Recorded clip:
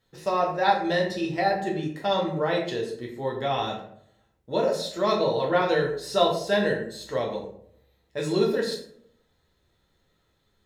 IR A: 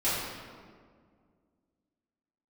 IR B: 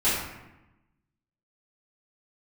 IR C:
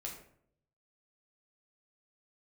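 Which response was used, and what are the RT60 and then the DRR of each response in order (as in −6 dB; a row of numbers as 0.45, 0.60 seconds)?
C; 1.9, 0.95, 0.65 seconds; −13.5, −13.0, −2.0 decibels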